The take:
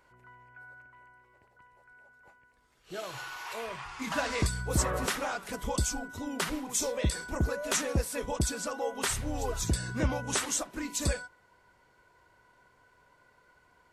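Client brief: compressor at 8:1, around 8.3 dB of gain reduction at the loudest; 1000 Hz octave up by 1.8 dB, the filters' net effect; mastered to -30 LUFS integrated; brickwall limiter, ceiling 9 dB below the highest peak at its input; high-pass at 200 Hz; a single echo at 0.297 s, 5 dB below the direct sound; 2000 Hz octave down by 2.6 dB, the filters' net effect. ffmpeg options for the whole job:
-af "highpass=200,equalizer=f=1k:t=o:g=3.5,equalizer=f=2k:t=o:g=-5.5,acompressor=threshold=-35dB:ratio=8,alimiter=level_in=7.5dB:limit=-24dB:level=0:latency=1,volume=-7.5dB,aecho=1:1:297:0.562,volume=10dB"

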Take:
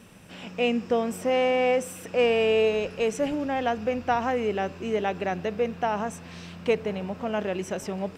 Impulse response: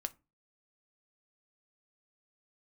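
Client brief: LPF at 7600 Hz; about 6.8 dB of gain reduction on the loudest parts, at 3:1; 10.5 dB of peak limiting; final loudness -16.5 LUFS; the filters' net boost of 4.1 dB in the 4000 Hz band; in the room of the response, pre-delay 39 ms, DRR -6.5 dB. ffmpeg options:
-filter_complex "[0:a]lowpass=7.6k,equalizer=f=4k:t=o:g=7,acompressor=threshold=-27dB:ratio=3,alimiter=level_in=3.5dB:limit=-24dB:level=0:latency=1,volume=-3.5dB,asplit=2[a][b];[1:a]atrim=start_sample=2205,adelay=39[c];[b][c]afir=irnorm=-1:irlink=0,volume=7.5dB[d];[a][d]amix=inputs=2:normalize=0,volume=12.5dB"

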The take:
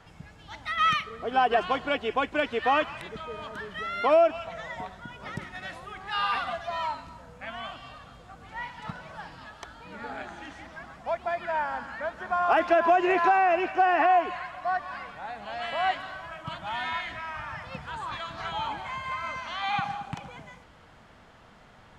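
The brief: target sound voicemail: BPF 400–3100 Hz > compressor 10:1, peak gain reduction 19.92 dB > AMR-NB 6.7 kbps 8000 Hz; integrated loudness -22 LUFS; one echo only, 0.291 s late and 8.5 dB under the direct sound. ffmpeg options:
-af "highpass=400,lowpass=3.1k,aecho=1:1:291:0.376,acompressor=threshold=-37dB:ratio=10,volume=20.5dB" -ar 8000 -c:a libopencore_amrnb -b:a 6700

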